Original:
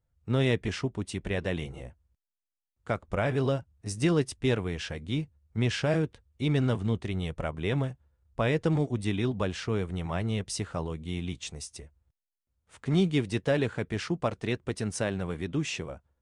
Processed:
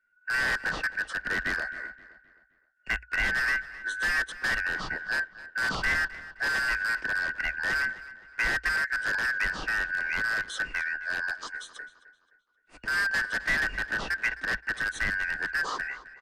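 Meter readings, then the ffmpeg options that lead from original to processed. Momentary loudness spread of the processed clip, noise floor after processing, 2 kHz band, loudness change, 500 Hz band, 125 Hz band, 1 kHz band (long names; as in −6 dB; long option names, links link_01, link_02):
8 LU, −68 dBFS, +14.5 dB, +2.0 dB, −14.0 dB, −18.5 dB, +3.0 dB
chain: -filter_complex "[0:a]afftfilt=real='real(if(lt(b,272),68*(eq(floor(b/68),0)*1+eq(floor(b/68),1)*0+eq(floor(b/68),2)*3+eq(floor(b/68),3)*2)+mod(b,68),b),0)':imag='imag(if(lt(b,272),68*(eq(floor(b/68),0)*1+eq(floor(b/68),1)*0+eq(floor(b/68),2)*3+eq(floor(b/68),3)*2)+mod(b,68),b),0)':win_size=2048:overlap=0.75,acrossover=split=180|1700[link_01][link_02][link_03];[link_01]aecho=1:1:2.7:0.97[link_04];[link_02]aeval=exprs='(mod(26.6*val(0)+1,2)-1)/26.6':channel_layout=same[link_05];[link_04][link_05][link_03]amix=inputs=3:normalize=0,afreqshift=-59,aemphasis=mode=reproduction:type=75fm,asplit=2[link_06][link_07];[link_07]asoftclip=type=tanh:threshold=-27.5dB,volume=-3.5dB[link_08];[link_06][link_08]amix=inputs=2:normalize=0,asplit=2[link_09][link_10];[link_10]adelay=261,lowpass=frequency=4400:poles=1,volume=-16dB,asplit=2[link_11][link_12];[link_12]adelay=261,lowpass=frequency=4400:poles=1,volume=0.41,asplit=2[link_13][link_14];[link_14]adelay=261,lowpass=frequency=4400:poles=1,volume=0.41,asplit=2[link_15][link_16];[link_16]adelay=261,lowpass=frequency=4400:poles=1,volume=0.41[link_17];[link_09][link_11][link_13][link_15][link_17]amix=inputs=5:normalize=0,aresample=32000,aresample=44100"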